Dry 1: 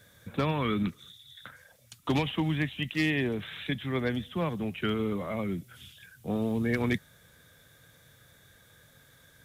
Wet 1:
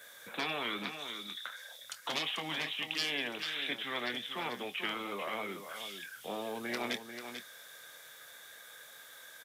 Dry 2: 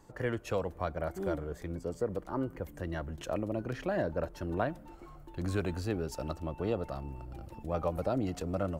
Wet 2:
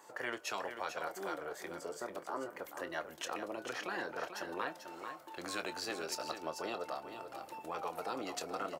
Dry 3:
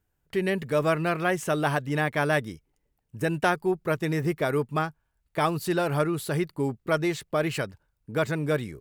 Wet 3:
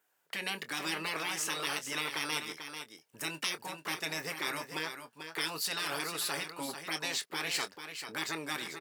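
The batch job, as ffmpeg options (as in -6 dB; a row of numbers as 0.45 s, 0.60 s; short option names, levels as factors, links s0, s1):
-filter_complex "[0:a]highpass=640,afftfilt=real='re*lt(hypot(re,im),0.0794)':imag='im*lt(hypot(re,im),0.0794)':win_size=1024:overlap=0.75,adynamicequalizer=threshold=0.00126:dfrequency=5000:dqfactor=1.8:tfrequency=5000:tqfactor=1.8:attack=5:release=100:ratio=0.375:range=3:mode=boostabove:tftype=bell,asplit=2[s0][s1];[s1]acompressor=threshold=0.00282:ratio=6,volume=1.26[s2];[s0][s2]amix=inputs=2:normalize=0,asplit=2[s3][s4];[s4]adelay=25,volume=0.237[s5];[s3][s5]amix=inputs=2:normalize=0,asplit=2[s6][s7];[s7]aecho=0:1:441:0.376[s8];[s6][s8]amix=inputs=2:normalize=0"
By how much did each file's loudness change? -6.5 LU, -5.5 LU, -8.0 LU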